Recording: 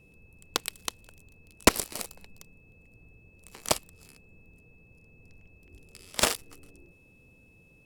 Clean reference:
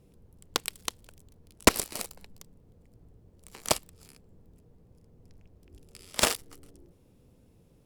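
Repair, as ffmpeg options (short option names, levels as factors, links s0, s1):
-af "bandreject=f=2600:w=30"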